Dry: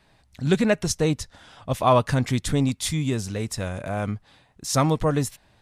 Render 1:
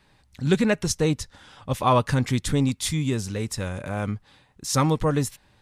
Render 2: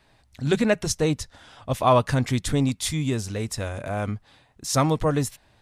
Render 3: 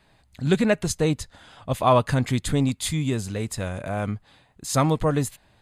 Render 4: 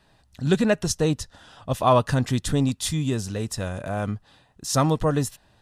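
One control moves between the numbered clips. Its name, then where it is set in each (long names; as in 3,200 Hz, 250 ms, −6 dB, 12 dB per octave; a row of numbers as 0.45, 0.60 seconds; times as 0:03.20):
notch filter, centre frequency: 670, 180, 5,600, 2,200 Hertz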